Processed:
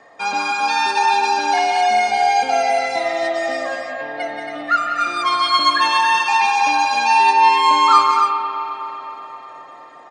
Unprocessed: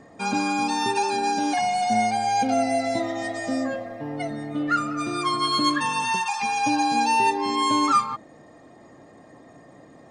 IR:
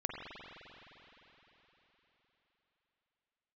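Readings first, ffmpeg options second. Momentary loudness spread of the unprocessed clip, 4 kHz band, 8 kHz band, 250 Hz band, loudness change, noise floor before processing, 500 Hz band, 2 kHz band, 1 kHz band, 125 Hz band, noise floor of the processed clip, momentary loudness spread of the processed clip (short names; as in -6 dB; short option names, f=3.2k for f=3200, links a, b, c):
9 LU, +7.5 dB, +1.5 dB, -8.0 dB, +7.0 dB, -50 dBFS, +5.0 dB, +9.0 dB, +8.5 dB, under -10 dB, -40 dBFS, 14 LU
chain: -filter_complex "[0:a]acrossover=split=540 5700:gain=0.0794 1 0.2[a][b][c];[a][b][c]amix=inputs=3:normalize=0,aecho=1:1:180.8|274.1:0.447|0.501,asplit=2[d][e];[1:a]atrim=start_sample=2205[f];[e][f]afir=irnorm=-1:irlink=0,volume=-2.5dB[g];[d][g]amix=inputs=2:normalize=0,volume=2.5dB"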